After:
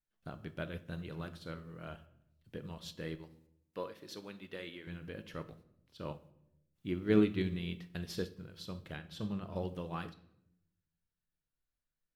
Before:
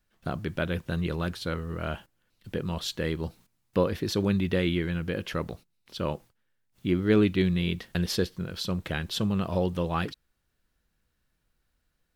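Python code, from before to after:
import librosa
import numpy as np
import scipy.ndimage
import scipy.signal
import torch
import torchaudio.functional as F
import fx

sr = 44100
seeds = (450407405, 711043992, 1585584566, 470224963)

y = fx.highpass(x, sr, hz=600.0, slope=6, at=(3.15, 4.87))
y = fx.high_shelf(y, sr, hz=3600.0, db=-5.5, at=(8.96, 9.56))
y = fx.room_shoebox(y, sr, seeds[0], volume_m3=230.0, walls='mixed', distance_m=0.45)
y = fx.upward_expand(y, sr, threshold_db=-40.0, expansion=1.5)
y = y * 10.0 ** (-7.0 / 20.0)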